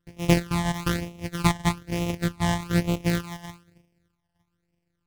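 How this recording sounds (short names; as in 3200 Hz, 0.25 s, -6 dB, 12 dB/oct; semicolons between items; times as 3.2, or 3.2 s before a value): a buzz of ramps at a fixed pitch in blocks of 256 samples; phasing stages 12, 1.1 Hz, lowest notch 400–1300 Hz; IMA ADPCM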